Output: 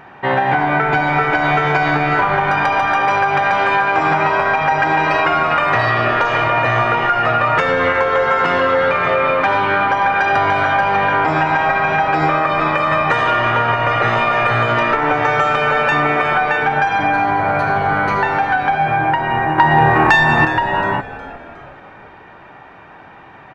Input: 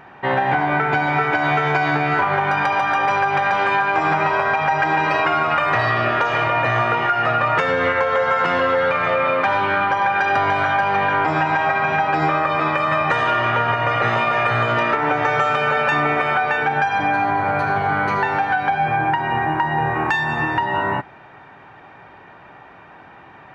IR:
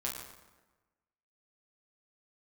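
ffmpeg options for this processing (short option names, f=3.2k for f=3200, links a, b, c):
-filter_complex "[0:a]asettb=1/sr,asplit=3[a][b][c];[a]atrim=end=19.584[d];[b]atrim=start=19.58:end=20.45,asetpts=PTS-STARTPTS,afade=t=in:d=0.004:c=qsin,afade=t=out:st=0.866:d=0.004:c=qsin,acontrast=53[e];[c]atrim=start=20.446[f];[d][e]acrossfade=d=0.004:c1=hsin:c2=qsin[g];[g][f]acrossfade=d=0.004:c1=qsin:c2=hsin,asplit=5[h][i][j][k][l];[i]adelay=362,afreqshift=-130,volume=-15.5dB[m];[j]adelay=724,afreqshift=-260,volume=-22.2dB[n];[k]adelay=1086,afreqshift=-390,volume=-29dB[o];[l]adelay=1448,afreqshift=-520,volume=-35.7dB[p];[h][m][n][o][p]amix=inputs=5:normalize=0,volume=3dB"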